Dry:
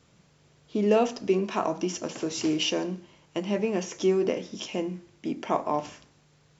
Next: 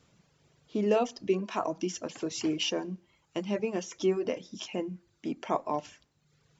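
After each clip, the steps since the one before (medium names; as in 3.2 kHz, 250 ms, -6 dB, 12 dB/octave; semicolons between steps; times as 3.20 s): reverb removal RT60 0.81 s; trim -3 dB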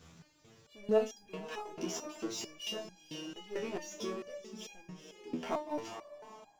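echo that smears into a reverb 459 ms, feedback 42%, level -13 dB; power-law waveshaper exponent 0.7; resonator arpeggio 4.5 Hz 81–810 Hz; trim +1 dB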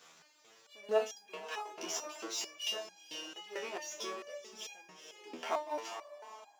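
high-pass 640 Hz 12 dB/octave; trim +3.5 dB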